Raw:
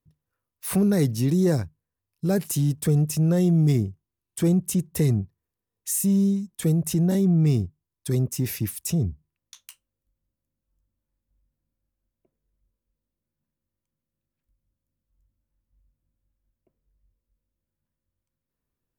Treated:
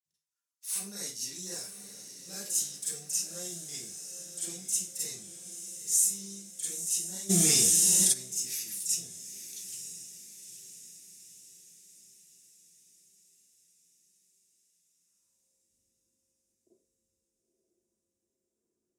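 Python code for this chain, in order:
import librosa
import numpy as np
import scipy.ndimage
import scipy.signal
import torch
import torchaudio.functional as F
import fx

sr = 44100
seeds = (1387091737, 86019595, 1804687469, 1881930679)

y = fx.filter_sweep_bandpass(x, sr, from_hz=6900.0, to_hz=350.0, start_s=14.55, end_s=15.62, q=2.0)
y = fx.echo_diffused(y, sr, ms=938, feedback_pct=52, wet_db=-9.0)
y = fx.rev_schroeder(y, sr, rt60_s=0.33, comb_ms=32, drr_db=-8.5)
y = fx.env_flatten(y, sr, amount_pct=100, at=(7.29, 8.12), fade=0.02)
y = y * 10.0 ** (-2.5 / 20.0)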